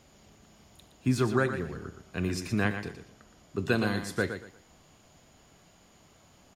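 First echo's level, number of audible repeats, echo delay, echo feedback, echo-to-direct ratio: -9.0 dB, 3, 118 ms, 25%, -8.5 dB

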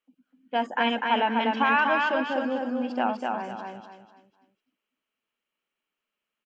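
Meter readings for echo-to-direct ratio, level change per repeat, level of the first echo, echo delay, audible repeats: -2.5 dB, -9.5 dB, -3.0 dB, 249 ms, 4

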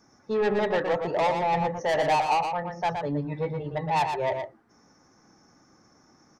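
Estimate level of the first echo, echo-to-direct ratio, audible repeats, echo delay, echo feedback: -6.0 dB, -6.0 dB, 1, 118 ms, no regular repeats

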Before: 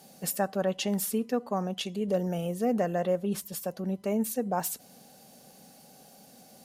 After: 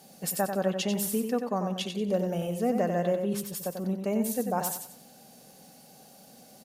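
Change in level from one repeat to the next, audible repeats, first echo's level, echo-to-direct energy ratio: -10.0 dB, 3, -6.5 dB, -6.0 dB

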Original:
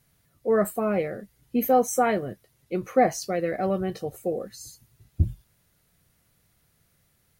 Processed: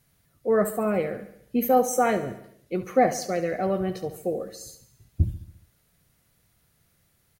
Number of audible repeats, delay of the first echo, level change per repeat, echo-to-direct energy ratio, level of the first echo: 5, 70 ms, -5.0 dB, -11.5 dB, -13.0 dB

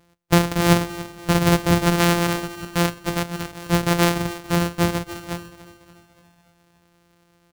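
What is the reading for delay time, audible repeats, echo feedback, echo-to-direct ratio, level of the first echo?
287 ms, 4, 53%, -14.5 dB, -16.0 dB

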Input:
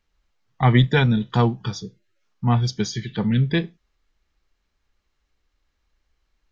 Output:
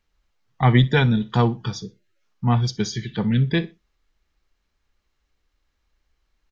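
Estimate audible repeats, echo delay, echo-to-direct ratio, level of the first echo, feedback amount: 2, 61 ms, -20.5 dB, -21.0 dB, 25%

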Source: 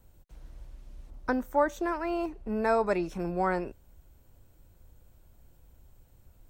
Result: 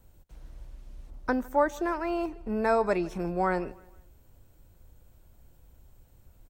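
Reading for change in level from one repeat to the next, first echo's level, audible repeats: -8.0 dB, -22.5 dB, 2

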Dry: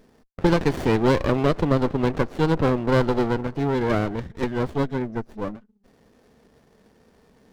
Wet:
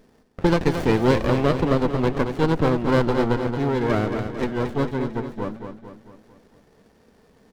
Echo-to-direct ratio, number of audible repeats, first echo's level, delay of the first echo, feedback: -6.0 dB, 5, -7.5 dB, 224 ms, 50%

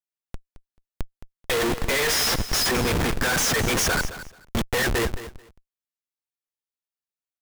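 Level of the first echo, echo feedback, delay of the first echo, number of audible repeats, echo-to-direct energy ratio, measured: -14.0 dB, 18%, 218 ms, 2, -14.0 dB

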